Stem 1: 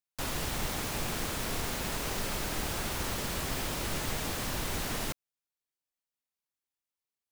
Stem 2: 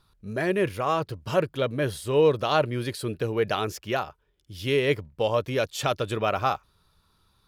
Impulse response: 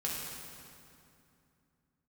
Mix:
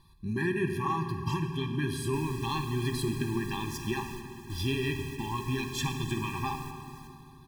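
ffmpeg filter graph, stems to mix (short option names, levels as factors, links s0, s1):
-filter_complex "[0:a]adelay=1950,volume=0.266,asplit=2[s0][s1];[s1]volume=0.211[s2];[1:a]acompressor=threshold=0.0178:ratio=2.5,volume=1.26,asplit=3[s3][s4][s5];[s4]volume=0.596[s6];[s5]apad=whole_len=408712[s7];[s0][s7]sidechaingate=range=0.251:threshold=0.00251:ratio=16:detection=peak[s8];[2:a]atrim=start_sample=2205[s9];[s2][s6]amix=inputs=2:normalize=0[s10];[s10][s9]afir=irnorm=-1:irlink=0[s11];[s8][s3][s11]amix=inputs=3:normalize=0,afftfilt=real='re*eq(mod(floor(b*sr/1024/390),2),0)':imag='im*eq(mod(floor(b*sr/1024/390),2),0)':win_size=1024:overlap=0.75"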